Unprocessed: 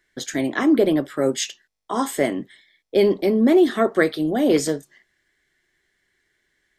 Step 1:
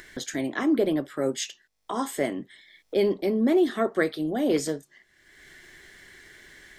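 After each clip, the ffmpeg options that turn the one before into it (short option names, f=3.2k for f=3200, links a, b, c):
-af "acompressor=mode=upward:threshold=-23dB:ratio=2.5,volume=-6dB"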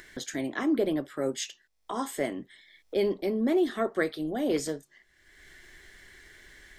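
-af "asubboost=boost=2.5:cutoff=86,volume=-3dB"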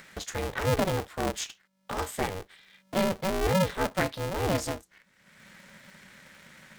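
-af "aeval=exprs='val(0)*sgn(sin(2*PI*190*n/s))':c=same"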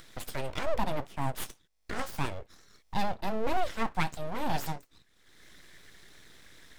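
-af "aeval=exprs='abs(val(0))':c=same"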